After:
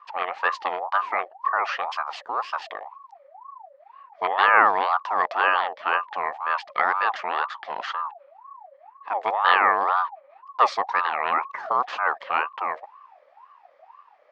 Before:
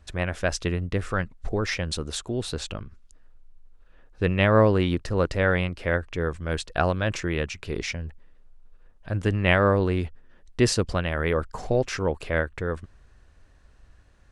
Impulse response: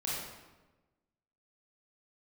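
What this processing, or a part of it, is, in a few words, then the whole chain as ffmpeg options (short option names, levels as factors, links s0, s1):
voice changer toy: -af "aeval=exprs='val(0)*sin(2*PI*830*n/s+830*0.35/2*sin(2*PI*2*n/s))':c=same,highpass=560,equalizer=f=800:t=q:w=4:g=6,equalizer=f=1200:t=q:w=4:g=8,equalizer=f=1800:t=q:w=4:g=8,equalizer=f=3700:t=q:w=4:g=-3,lowpass=f=4400:w=0.5412,lowpass=f=4400:w=1.3066"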